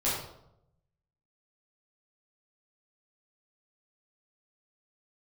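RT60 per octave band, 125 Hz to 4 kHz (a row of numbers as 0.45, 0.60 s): 1.3, 0.90, 0.85, 0.75, 0.55, 0.50 s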